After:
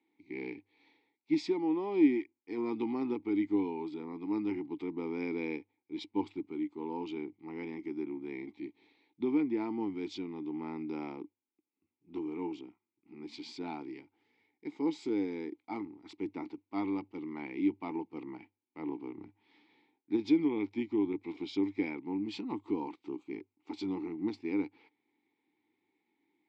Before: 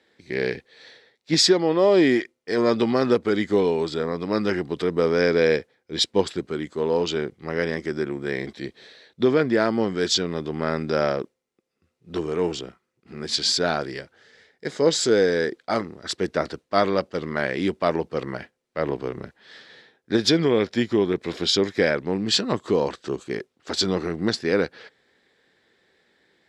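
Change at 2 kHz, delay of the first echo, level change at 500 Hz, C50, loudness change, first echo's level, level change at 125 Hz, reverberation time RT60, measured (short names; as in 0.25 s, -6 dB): -18.5 dB, none, -17.5 dB, none, -12.5 dB, none, -19.0 dB, none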